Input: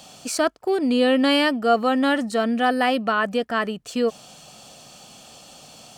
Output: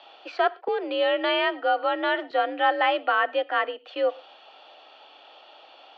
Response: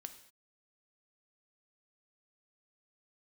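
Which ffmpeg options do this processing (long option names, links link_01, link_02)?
-filter_complex "[0:a]highpass=frequency=360:width_type=q:width=0.5412,highpass=frequency=360:width_type=q:width=1.307,lowpass=frequency=3500:width_type=q:width=0.5176,lowpass=frequency=3500:width_type=q:width=0.7071,lowpass=frequency=3500:width_type=q:width=1.932,afreqshift=56,asplit=2[link_01][link_02];[1:a]atrim=start_sample=2205,atrim=end_sample=6174[link_03];[link_02][link_03]afir=irnorm=-1:irlink=0,volume=-1.5dB[link_04];[link_01][link_04]amix=inputs=2:normalize=0,asettb=1/sr,asplit=3[link_05][link_06][link_07];[link_05]atrim=end=0.684[link_08];[link_06]atrim=start=0.68:end=2.31,asetpts=PTS-STARTPTS,afade=type=in:duration=0.004:curve=qsin,afade=type=out:start_time=1.626:duration=0.004:curve=qsin,acrossover=split=540|2700[link_09][link_10][link_11];[link_09]acompressor=threshold=-25dB:ratio=4[link_12];[link_10]acompressor=threshold=-18dB:ratio=4[link_13];[link_11]acompressor=threshold=-29dB:ratio=4[link_14];[link_12][link_13][link_14]amix=inputs=3:normalize=0[link_15];[link_07]atrim=start=2.306[link_16];[link_08][link_15]acrossfade=duration=0.004:curve1=hsin:curve2=qsin[link_17];[link_17][link_16]acrossfade=duration=0.004:curve1=qsin:curve2=hsin,volume=-4dB"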